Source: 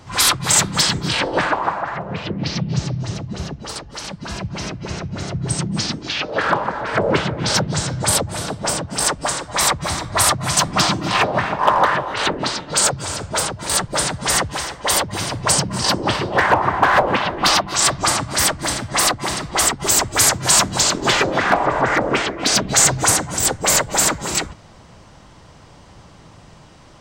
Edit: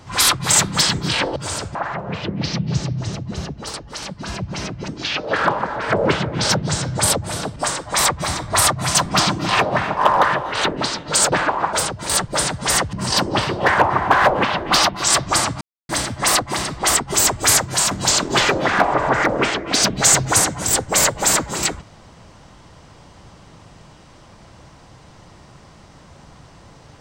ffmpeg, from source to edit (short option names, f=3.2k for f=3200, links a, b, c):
-filter_complex "[0:a]asplit=11[a][b][c][d][e][f][g][h][i][j][k];[a]atrim=end=1.362[l];[b]atrim=start=12.938:end=13.332[m];[c]atrim=start=1.768:end=4.902[n];[d]atrim=start=5.928:end=8.612[o];[e]atrim=start=9.178:end=12.942[p];[f]atrim=start=1.358:end=1.772[q];[g]atrim=start=13.328:end=14.532[r];[h]atrim=start=15.648:end=18.33,asetpts=PTS-STARTPTS,afade=t=out:st=2.678:d=0.004:c=hsin[s];[i]atrim=start=18.33:end=18.61,asetpts=PTS-STARTPTS,volume=0[t];[j]atrim=start=18.61:end=20.63,asetpts=PTS-STARTPTS,afade=t=in:d=0.004:c=hsin,afade=t=out:st=1.64:d=0.38:silence=0.473151[u];[k]atrim=start=20.63,asetpts=PTS-STARTPTS,afade=t=in:d=0.004:c=hsin:silence=0.473151[v];[l][m]acrossfade=d=0.004:c1=hsin:c2=hsin[w];[w][n]acrossfade=d=0.004:c1=hsin:c2=hsin[x];[x][o]acrossfade=d=0.004:c1=hsin:c2=hsin[y];[y][p]acrossfade=d=0.004:c1=hsin:c2=hsin[z];[z][q]acrossfade=d=0.004:c1=hsin:c2=hsin[aa];[aa][r]acrossfade=d=0.004:c1=hsin:c2=hsin[ab];[s][t][u][v]concat=n=4:v=0:a=1[ac];[ab][ac]acrossfade=d=0.004:c1=hsin:c2=hsin"